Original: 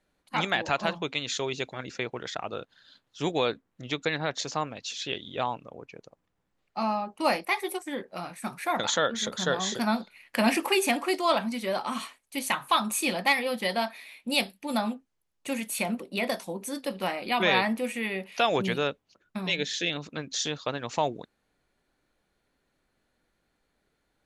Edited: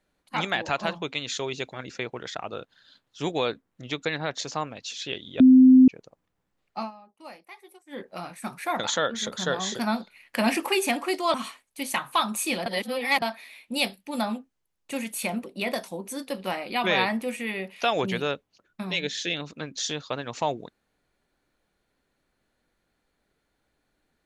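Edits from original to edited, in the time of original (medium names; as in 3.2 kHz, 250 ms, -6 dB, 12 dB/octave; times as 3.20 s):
5.40–5.88 s: bleep 258 Hz -9.5 dBFS
6.78–8.01 s: dip -19 dB, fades 0.13 s
11.34–11.90 s: delete
13.22–13.78 s: reverse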